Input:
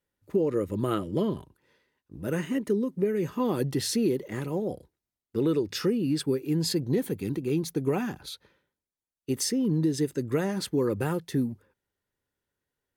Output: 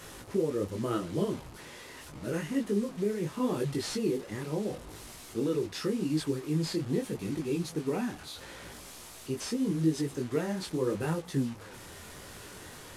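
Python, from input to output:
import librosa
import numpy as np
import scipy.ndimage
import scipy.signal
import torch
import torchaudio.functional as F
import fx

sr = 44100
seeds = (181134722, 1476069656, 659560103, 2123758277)

y = fx.delta_mod(x, sr, bps=64000, step_db=-37.0)
y = fx.dmg_buzz(y, sr, base_hz=60.0, harmonics=21, level_db=-54.0, tilt_db=-1, odd_only=False)
y = fx.detune_double(y, sr, cents=28)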